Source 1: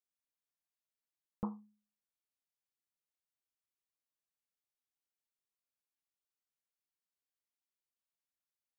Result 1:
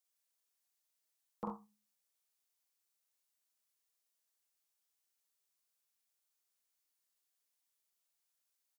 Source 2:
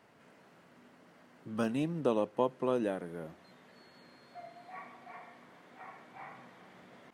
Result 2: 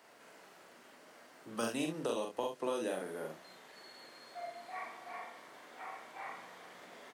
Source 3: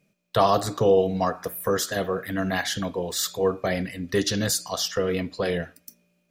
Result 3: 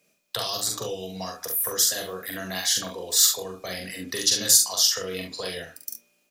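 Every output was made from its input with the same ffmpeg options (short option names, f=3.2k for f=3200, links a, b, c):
-filter_complex "[0:a]bass=f=250:g=-14,treble=f=4k:g=7,bandreject=f=50:t=h:w=6,bandreject=f=100:t=h:w=6,bandreject=f=150:t=h:w=6,bandreject=f=200:t=h:w=6,acrossover=split=160|3000[a][b][c];[b]acompressor=threshold=-36dB:ratio=10[d];[a][d][c]amix=inputs=3:normalize=0,aecho=1:1:43|69:0.668|0.355,volume=2dB"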